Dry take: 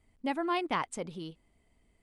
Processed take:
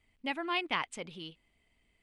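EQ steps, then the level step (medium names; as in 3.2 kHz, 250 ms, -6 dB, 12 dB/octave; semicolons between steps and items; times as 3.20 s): peaking EQ 2.7 kHz +12.5 dB 1.5 oct; -6.0 dB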